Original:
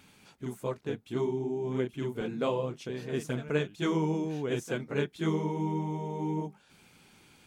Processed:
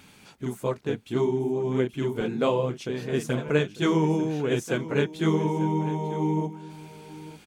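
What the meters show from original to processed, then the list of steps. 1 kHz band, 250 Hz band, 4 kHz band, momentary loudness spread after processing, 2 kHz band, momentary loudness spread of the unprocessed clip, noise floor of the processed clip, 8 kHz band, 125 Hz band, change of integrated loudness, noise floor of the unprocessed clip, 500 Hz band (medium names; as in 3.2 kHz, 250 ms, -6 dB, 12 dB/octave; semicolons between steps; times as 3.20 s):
+6.0 dB, +6.0 dB, +6.0 dB, 11 LU, +6.0 dB, 6 LU, -53 dBFS, +6.0 dB, +6.0 dB, +6.0 dB, -61 dBFS, +6.0 dB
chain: delay 895 ms -16 dB; trim +6 dB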